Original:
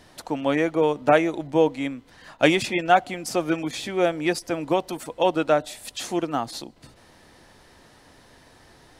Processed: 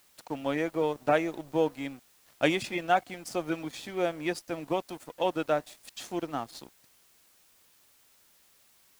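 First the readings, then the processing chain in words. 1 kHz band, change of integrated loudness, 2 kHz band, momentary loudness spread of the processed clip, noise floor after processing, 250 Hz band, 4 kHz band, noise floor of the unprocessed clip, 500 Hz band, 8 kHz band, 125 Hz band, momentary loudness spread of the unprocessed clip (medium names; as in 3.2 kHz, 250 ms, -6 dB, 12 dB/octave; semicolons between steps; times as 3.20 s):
-7.5 dB, -7.5 dB, -7.5 dB, 13 LU, -63 dBFS, -8.0 dB, -8.0 dB, -54 dBFS, -7.5 dB, -9.0 dB, -7.5 dB, 12 LU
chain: crossover distortion -41 dBFS; added noise white -56 dBFS; trim -7 dB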